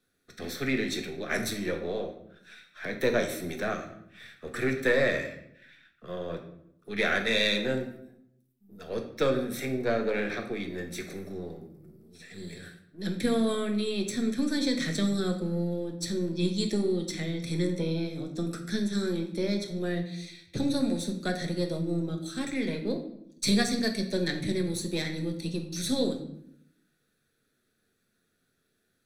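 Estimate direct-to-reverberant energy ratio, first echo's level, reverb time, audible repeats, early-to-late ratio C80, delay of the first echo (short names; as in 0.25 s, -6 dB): 3.0 dB, none, 0.75 s, none, 11.0 dB, none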